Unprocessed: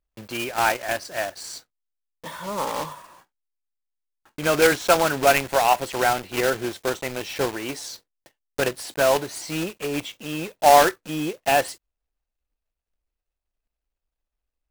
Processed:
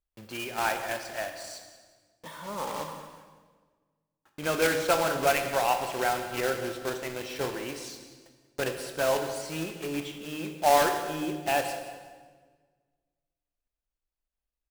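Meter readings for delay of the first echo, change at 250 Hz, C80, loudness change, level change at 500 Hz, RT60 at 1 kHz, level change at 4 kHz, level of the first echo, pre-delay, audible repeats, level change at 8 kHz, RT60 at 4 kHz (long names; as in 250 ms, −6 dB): 182 ms, −5.5 dB, 8.0 dB, −6.5 dB, −6.5 dB, 1.4 s, −6.5 dB, −16.0 dB, 20 ms, 2, −6.5 dB, 1.2 s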